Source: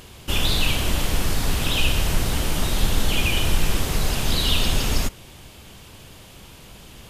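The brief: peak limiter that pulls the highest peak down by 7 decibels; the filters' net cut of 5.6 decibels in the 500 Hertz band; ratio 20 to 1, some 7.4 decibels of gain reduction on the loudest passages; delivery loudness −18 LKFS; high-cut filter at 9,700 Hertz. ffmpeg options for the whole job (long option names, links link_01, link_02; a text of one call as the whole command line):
ffmpeg -i in.wav -af "lowpass=9700,equalizer=frequency=500:width_type=o:gain=-7.5,acompressor=threshold=-20dB:ratio=20,volume=12.5dB,alimiter=limit=-6dB:level=0:latency=1" out.wav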